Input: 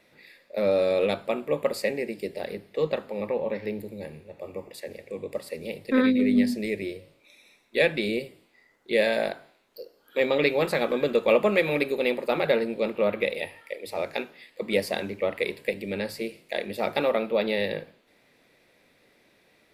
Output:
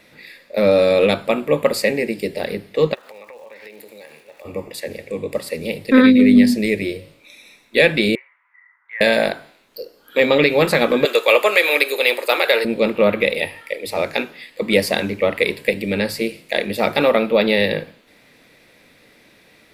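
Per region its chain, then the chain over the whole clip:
2.93–4.44 HPF 670 Hz + compressor 10:1, threshold -45 dBFS + crackle 430/s -56 dBFS
8.15–9.01 elliptic band-pass 960–2000 Hz, stop band 70 dB + compressor 1.5:1, threshold -50 dBFS
11.05–12.65 HPF 370 Hz 24 dB/oct + tilt +2.5 dB/oct
whole clip: bell 680 Hz -3.5 dB 1.3 oct; notch 380 Hz, Q 12; maximiser +12.5 dB; gain -1 dB

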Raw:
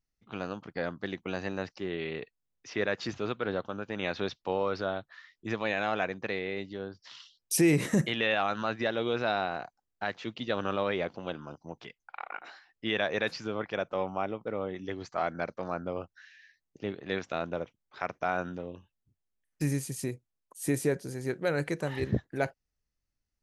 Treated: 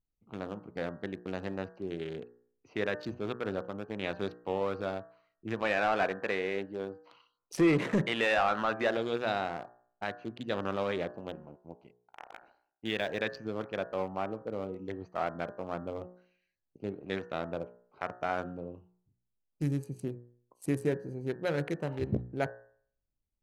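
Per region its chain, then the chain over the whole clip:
5.62–8.97 high shelf 4800 Hz -11.5 dB + overdrive pedal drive 15 dB, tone 2600 Hz, clips at -14.5 dBFS
11.28–13.22 G.711 law mismatch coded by A + bell 1200 Hz -8.5 dB 0.3 oct
whole clip: Wiener smoothing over 25 samples; de-hum 60.19 Hz, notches 31; gain -1 dB

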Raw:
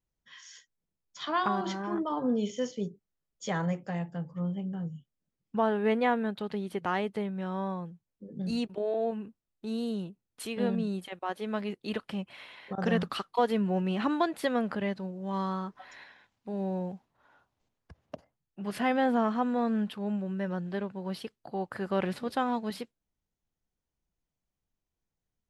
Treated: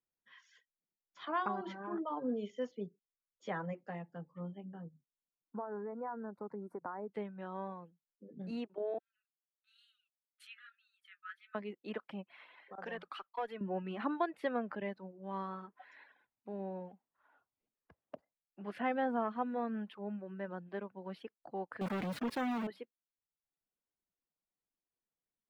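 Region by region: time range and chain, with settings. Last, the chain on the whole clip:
4.85–7.13 compressor 10:1, threshold -30 dBFS + Butterworth band-stop 3100 Hz, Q 0.51 + small resonant body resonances 1000/1400 Hz, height 7 dB, ringing for 20 ms
8.98–11.55 brick-wall FIR high-pass 1200 Hz + flange 1.1 Hz, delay 6.5 ms, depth 8.3 ms, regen -49% + three-band expander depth 70%
12.63–13.61 HPF 770 Hz 6 dB/oct + tube stage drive 24 dB, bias 0.3
21.81–22.67 tone controls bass +13 dB, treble +14 dB + compressor 12:1, threshold -25 dBFS + companded quantiser 2-bit
whole clip: reverb removal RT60 0.69 s; three-band isolator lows -15 dB, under 190 Hz, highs -19 dB, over 2900 Hz; gain -5.5 dB

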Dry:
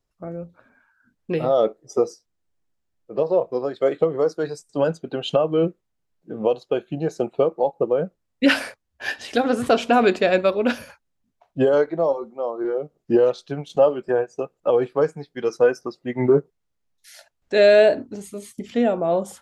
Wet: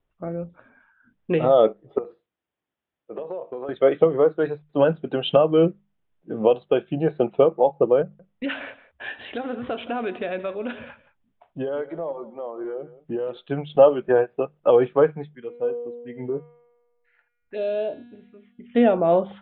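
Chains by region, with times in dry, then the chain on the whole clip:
1.98–3.69 HPF 330 Hz 6 dB/oct + compressor 12:1, threshold -30 dBFS + flutter echo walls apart 11 m, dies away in 0.21 s
8.02–13.37 compressor 2:1, threshold -38 dBFS + echo 0.173 s -17 dB
15.35–18.75 envelope phaser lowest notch 570 Hz, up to 1900 Hz, full sweep at -17 dBFS + resonator 240 Hz, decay 1.4 s, mix 80%
whole clip: steep low-pass 3600 Hz 96 dB/oct; notches 50/100/150/200 Hz; gain +2.5 dB

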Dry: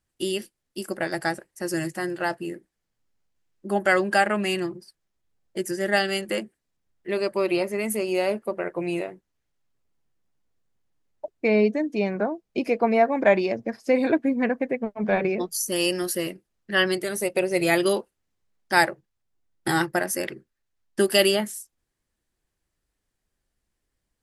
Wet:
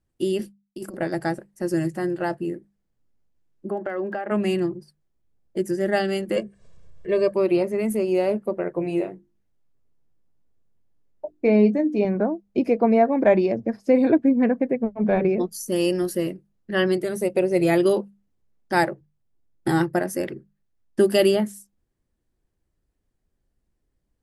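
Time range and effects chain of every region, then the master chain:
0.39–0.97 expander -58 dBFS + negative-ratio compressor -34 dBFS, ratio -0.5
3.69–4.3 BPF 280–2100 Hz + compressor 10:1, threshold -24 dBFS + crackle 14/s -38 dBFS
6.36–7.34 steep low-pass 9300 Hz 96 dB/oct + comb 1.8 ms, depth 93% + upward compressor, threshold -34 dBFS
8.79–12.05 notches 50/100/150/200/250/300/350 Hz + doubler 20 ms -9 dB
whole clip: tilt shelf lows +7 dB, about 750 Hz; notches 50/100/150/200 Hz

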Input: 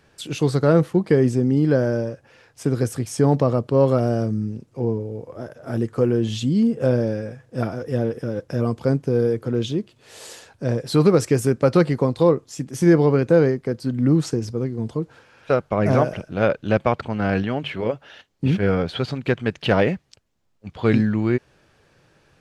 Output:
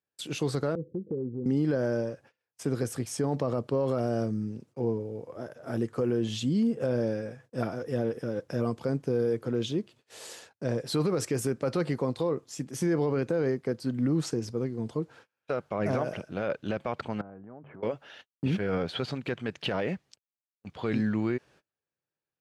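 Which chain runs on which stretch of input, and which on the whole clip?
0.75–1.46 steep low-pass 530 Hz 96 dB/oct + compressor 2.5:1, threshold -28 dBFS
17.21–17.83 LPF 1200 Hz 24 dB/oct + compressor 10:1, threshold -36 dBFS
whole clip: gate -46 dBFS, range -31 dB; HPF 160 Hz 6 dB/oct; limiter -14.5 dBFS; gain -4.5 dB

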